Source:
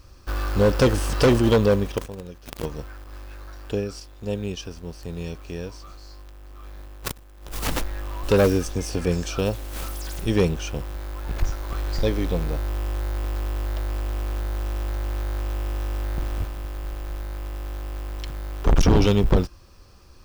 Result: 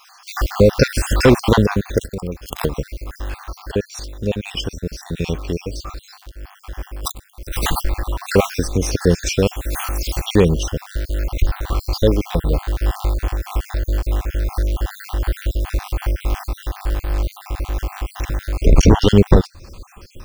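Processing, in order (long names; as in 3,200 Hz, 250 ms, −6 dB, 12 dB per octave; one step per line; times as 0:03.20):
time-frequency cells dropped at random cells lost 50%
in parallel at +3 dB: downward compressor, threshold −32 dBFS, peak gain reduction 16.5 dB
on the sum: amplitude modulation by smooth noise, depth 55%
level +8 dB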